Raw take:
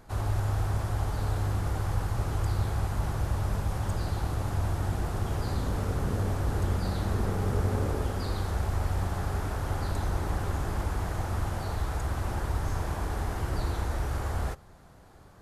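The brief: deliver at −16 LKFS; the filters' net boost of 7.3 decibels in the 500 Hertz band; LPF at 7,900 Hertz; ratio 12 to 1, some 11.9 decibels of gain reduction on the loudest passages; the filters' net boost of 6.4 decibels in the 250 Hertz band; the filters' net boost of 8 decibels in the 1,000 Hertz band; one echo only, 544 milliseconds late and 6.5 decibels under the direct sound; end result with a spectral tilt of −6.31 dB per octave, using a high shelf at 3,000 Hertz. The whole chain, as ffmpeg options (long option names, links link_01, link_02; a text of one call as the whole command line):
ffmpeg -i in.wav -af "lowpass=7900,equalizer=frequency=250:width_type=o:gain=7,equalizer=frequency=500:width_type=o:gain=5,equalizer=frequency=1000:width_type=o:gain=7.5,highshelf=frequency=3000:gain=5,acompressor=threshold=-33dB:ratio=12,aecho=1:1:544:0.473,volume=21.5dB" out.wav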